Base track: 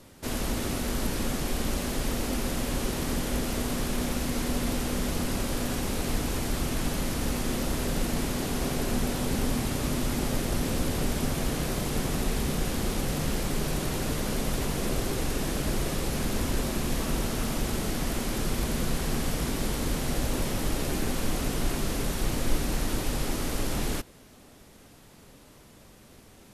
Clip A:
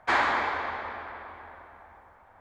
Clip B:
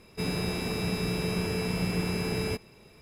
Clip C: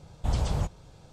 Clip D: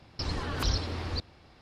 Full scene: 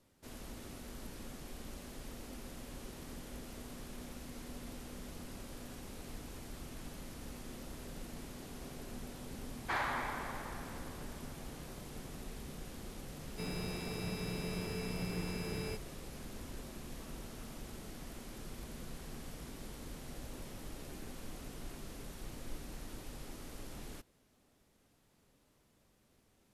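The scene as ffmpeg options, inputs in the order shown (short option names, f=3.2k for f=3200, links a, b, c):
-filter_complex "[0:a]volume=-18.5dB[a];[1:a]asoftclip=type=hard:threshold=-16.5dB,atrim=end=2.4,asetpts=PTS-STARTPTS,volume=-11.5dB,afade=t=in:d=0.004:c=hsin,afade=t=out:st=2.396:d=0.004:c=hsin,adelay=9610[b];[2:a]atrim=end=3.01,asetpts=PTS-STARTPTS,volume=-10.5dB,afade=t=in:d=0.004:c=hsin,afade=t=out:st=3.006:d=0.004:c=hsin,adelay=13200[c];[a][b][c]amix=inputs=3:normalize=0"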